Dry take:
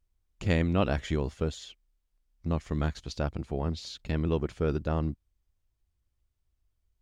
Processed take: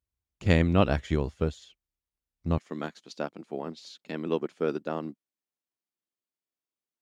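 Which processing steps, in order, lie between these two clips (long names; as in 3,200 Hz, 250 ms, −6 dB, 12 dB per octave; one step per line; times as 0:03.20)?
high-pass filter 50 Hz 24 dB per octave, from 0:02.58 210 Hz
expander for the loud parts 1.5 to 1, over −47 dBFS
level +4.5 dB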